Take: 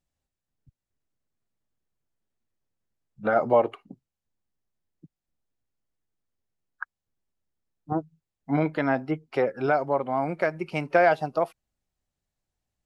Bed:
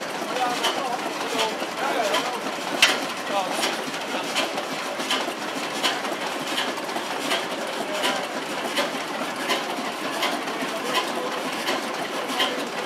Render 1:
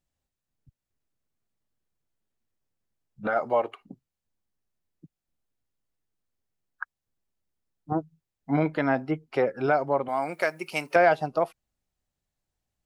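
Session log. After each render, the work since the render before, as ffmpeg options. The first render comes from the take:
ffmpeg -i in.wav -filter_complex "[0:a]asettb=1/sr,asplit=3[link_01][link_02][link_03];[link_01]atrim=end=3.274[link_04];[link_02]atrim=start=3.27:end=3.81,asetpts=PTS-STARTPTS,afade=type=in:duration=0.004:curve=qsin,afade=type=out:start_time=0.536:duration=0.004:curve=qsin,lowshelf=frequency=480:gain=-11[link_05];[link_03]atrim=start=3.806[link_06];[link_04][link_05]acrossfade=duration=0.004:curve1=hsin:curve2=qsin[link_07];[link_07][link_06]acrossfade=duration=0.004:curve1=qsin:curve2=hsin,asettb=1/sr,asplit=3[link_08][link_09][link_10];[link_08]atrim=end=10.084[link_11];[link_09]atrim=start=10.08:end=10.96,asetpts=PTS-STARTPTS,afade=type=in:duration=0.004:curve=qsin,afade=type=out:start_time=0.876:duration=0.004:curve=qsin,aemphasis=mode=production:type=riaa[link_12];[link_10]atrim=start=10.956[link_13];[link_11][link_12]acrossfade=duration=0.004:curve1=hsin:curve2=qsin[link_14];[link_14][link_13]acrossfade=duration=0.004:curve1=qsin:curve2=hsin" out.wav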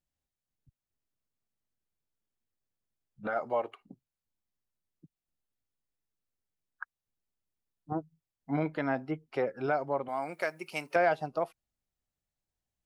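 ffmpeg -i in.wav -af "volume=-6.5dB" out.wav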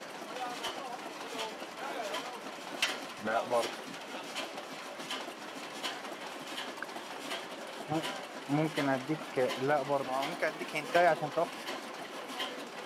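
ffmpeg -i in.wav -i bed.wav -filter_complex "[1:a]volume=-14.5dB[link_01];[0:a][link_01]amix=inputs=2:normalize=0" out.wav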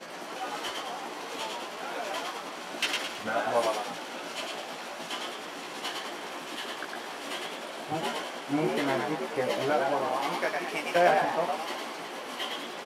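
ffmpeg -i in.wav -filter_complex "[0:a]asplit=2[link_01][link_02];[link_02]adelay=17,volume=-3dB[link_03];[link_01][link_03]amix=inputs=2:normalize=0,asplit=7[link_04][link_05][link_06][link_07][link_08][link_09][link_10];[link_05]adelay=108,afreqshift=73,volume=-3dB[link_11];[link_06]adelay=216,afreqshift=146,volume=-9.6dB[link_12];[link_07]adelay=324,afreqshift=219,volume=-16.1dB[link_13];[link_08]adelay=432,afreqshift=292,volume=-22.7dB[link_14];[link_09]adelay=540,afreqshift=365,volume=-29.2dB[link_15];[link_10]adelay=648,afreqshift=438,volume=-35.8dB[link_16];[link_04][link_11][link_12][link_13][link_14][link_15][link_16]amix=inputs=7:normalize=0" out.wav

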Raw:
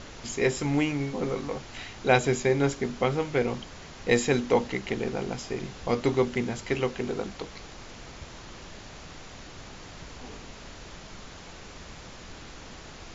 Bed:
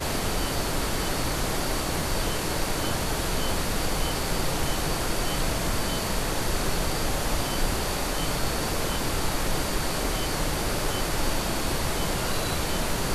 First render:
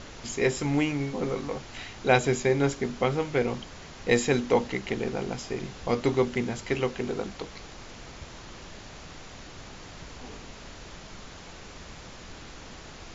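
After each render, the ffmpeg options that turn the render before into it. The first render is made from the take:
ffmpeg -i in.wav -af anull out.wav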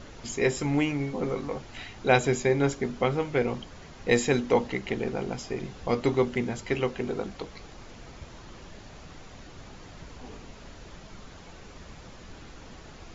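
ffmpeg -i in.wav -af "afftdn=noise_reduction=6:noise_floor=-45" out.wav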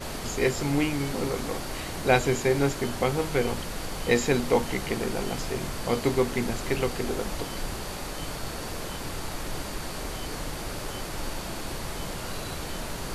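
ffmpeg -i in.wav -i bed.wav -filter_complex "[1:a]volume=-7.5dB[link_01];[0:a][link_01]amix=inputs=2:normalize=0" out.wav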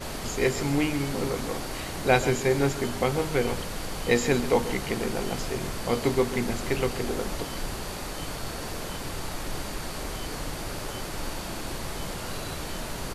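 ffmpeg -i in.wav -af "aecho=1:1:136:0.211" out.wav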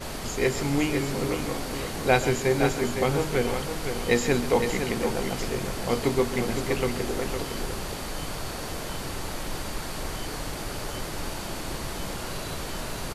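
ffmpeg -i in.wav -af "aecho=1:1:511:0.447" out.wav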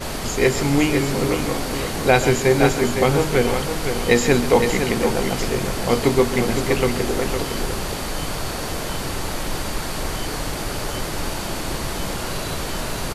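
ffmpeg -i in.wav -af "volume=7dB,alimiter=limit=-1dB:level=0:latency=1" out.wav

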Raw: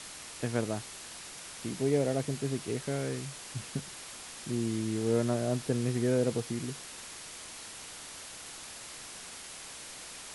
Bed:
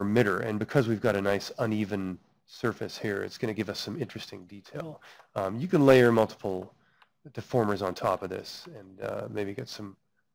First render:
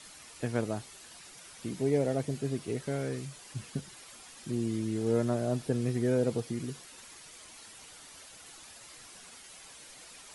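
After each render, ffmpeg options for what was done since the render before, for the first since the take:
ffmpeg -i in.wav -af "afftdn=noise_reduction=9:noise_floor=-46" out.wav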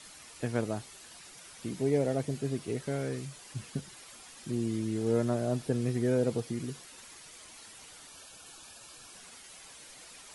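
ffmpeg -i in.wav -filter_complex "[0:a]asettb=1/sr,asplit=3[link_01][link_02][link_03];[link_01]atrim=end=8.074[link_04];[link_02]atrim=start=8.07:end=9.14,asetpts=PTS-STARTPTS,afade=type=in:duration=0.004:curve=qsin,afade=type=out:start_time=1.066:duration=0.004:curve=qsin,asuperstop=centerf=2000:order=12:qfactor=6[link_05];[link_03]atrim=start=9.136[link_06];[link_04][link_05]acrossfade=duration=0.004:curve1=hsin:curve2=qsin[link_07];[link_07][link_06]acrossfade=duration=0.004:curve1=qsin:curve2=hsin" out.wav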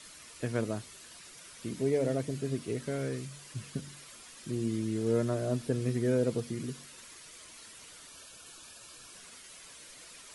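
ffmpeg -i in.wav -af "equalizer=frequency=800:width=5.5:gain=-8.5,bandreject=frequency=47.58:width_type=h:width=4,bandreject=frequency=95.16:width_type=h:width=4,bandreject=frequency=142.74:width_type=h:width=4,bandreject=frequency=190.32:width_type=h:width=4,bandreject=frequency=237.9:width_type=h:width=4,bandreject=frequency=285.48:width_type=h:width=4" out.wav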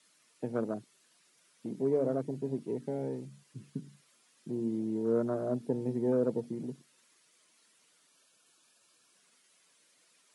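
ffmpeg -i in.wav -af "afwtdn=0.0126,highpass=frequency=150:width=0.5412,highpass=frequency=150:width=1.3066" out.wav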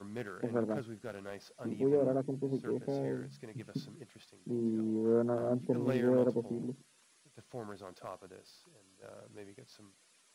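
ffmpeg -i in.wav -i bed.wav -filter_complex "[1:a]volume=-18dB[link_01];[0:a][link_01]amix=inputs=2:normalize=0" out.wav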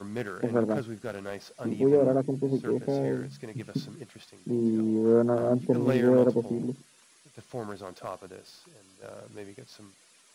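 ffmpeg -i in.wav -af "volume=7.5dB" out.wav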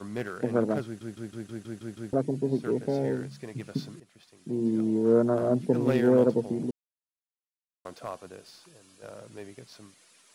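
ffmpeg -i in.wav -filter_complex "[0:a]asplit=12[link_01][link_02][link_03][link_04][link_05][link_06][link_07][link_08][link_09][link_10][link_11][link_12];[link_01]atrim=end=1.012[link_13];[link_02]atrim=start=0.848:end=1.012[link_14];[link_03]atrim=start=0.848:end=1.012[link_15];[link_04]atrim=start=0.848:end=1.012[link_16];[link_05]atrim=start=0.848:end=1.012[link_17];[link_06]atrim=start=0.848:end=1.012[link_18];[link_07]atrim=start=0.848:end=1.012[link_19];[link_08]atrim=start=0.848:end=1.012[link_20];[link_09]atrim=start=2.128:end=4,asetpts=PTS-STARTPTS,afade=type=out:start_time=1.868:duration=0.004:curve=hsin:silence=0.199526[link_21];[link_10]atrim=start=4:end=6.71,asetpts=PTS-STARTPTS,afade=type=in:duration=0.77:silence=0.199526,afade=type=out:start_time=2.706:duration=0.004:curve=hsin[link_22];[link_11]atrim=start=6.71:end=7.85,asetpts=PTS-STARTPTS,volume=0[link_23];[link_12]atrim=start=7.85,asetpts=PTS-STARTPTS,afade=type=in:duration=0.004:curve=hsin[link_24];[link_13][link_14]acrossfade=duration=0.004:curve1=hsin:curve2=hsin[link_25];[link_25][link_15]acrossfade=duration=0.004:curve1=hsin:curve2=hsin[link_26];[link_26][link_16]acrossfade=duration=0.004:curve1=hsin:curve2=hsin[link_27];[link_27][link_17]acrossfade=duration=0.004:curve1=hsin:curve2=hsin[link_28];[link_28][link_18]acrossfade=duration=0.004:curve1=hsin:curve2=hsin[link_29];[link_29][link_19]acrossfade=duration=0.004:curve1=hsin:curve2=hsin[link_30];[link_30][link_20]acrossfade=duration=0.004:curve1=hsin:curve2=hsin[link_31];[link_21][link_22][link_23][link_24]concat=n=4:v=0:a=1[link_32];[link_31][link_32]acrossfade=duration=0.004:curve1=hsin:curve2=hsin" out.wav

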